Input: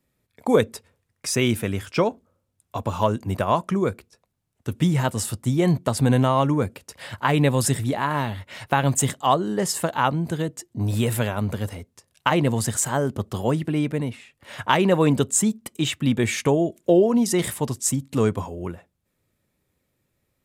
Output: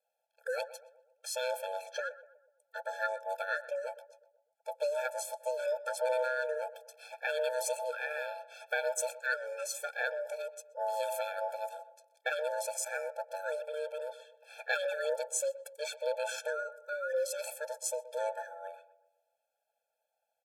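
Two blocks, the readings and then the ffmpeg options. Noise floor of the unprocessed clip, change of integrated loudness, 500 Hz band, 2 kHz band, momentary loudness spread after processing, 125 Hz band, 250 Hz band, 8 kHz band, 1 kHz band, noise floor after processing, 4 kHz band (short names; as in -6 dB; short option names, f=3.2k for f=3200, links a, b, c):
-75 dBFS, -13.0 dB, -9.5 dB, -5.5 dB, 12 LU, under -40 dB, under -40 dB, -12.5 dB, -13.5 dB, -84 dBFS, -13.5 dB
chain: -filter_complex "[0:a]aeval=exprs='val(0)*sin(2*PI*760*n/s)':c=same,asplit=2[a][b];[b]adelay=124,lowpass=f=1.3k:p=1,volume=-14dB,asplit=2[c][d];[d]adelay=124,lowpass=f=1.3k:p=1,volume=0.52,asplit=2[e][f];[f]adelay=124,lowpass=f=1.3k:p=1,volume=0.52,asplit=2[g][h];[h]adelay=124,lowpass=f=1.3k:p=1,volume=0.52,asplit=2[i][j];[j]adelay=124,lowpass=f=1.3k:p=1,volume=0.52[k];[a][c][e][g][i][k]amix=inputs=6:normalize=0,afftfilt=real='re*eq(mod(floor(b*sr/1024/450),2),1)':imag='im*eq(mod(floor(b*sr/1024/450),2),1)':win_size=1024:overlap=0.75,volume=-6.5dB"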